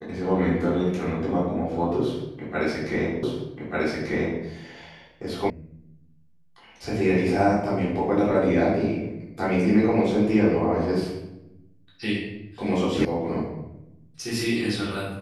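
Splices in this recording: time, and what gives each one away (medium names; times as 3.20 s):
3.23 s: repeat of the last 1.19 s
5.50 s: sound stops dead
13.05 s: sound stops dead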